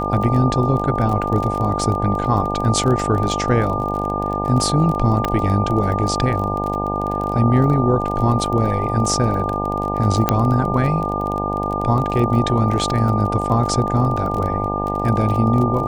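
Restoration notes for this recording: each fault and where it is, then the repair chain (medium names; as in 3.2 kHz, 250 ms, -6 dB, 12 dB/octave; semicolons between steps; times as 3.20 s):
buzz 50 Hz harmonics 18 -24 dBFS
crackle 26 per s -24 dBFS
whine 1.2 kHz -23 dBFS
5.25 s: pop -7 dBFS
10.29 s: pop -1 dBFS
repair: de-click; de-hum 50 Hz, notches 18; band-stop 1.2 kHz, Q 30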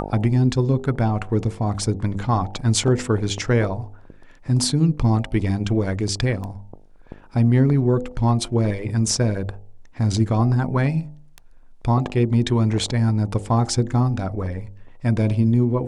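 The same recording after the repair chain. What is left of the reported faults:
5.25 s: pop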